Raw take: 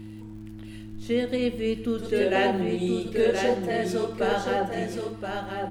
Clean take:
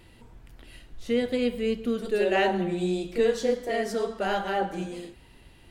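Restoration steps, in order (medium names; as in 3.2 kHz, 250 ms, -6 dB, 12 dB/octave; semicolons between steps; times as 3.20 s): de-click; de-hum 107.2 Hz, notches 3; inverse comb 1024 ms -5 dB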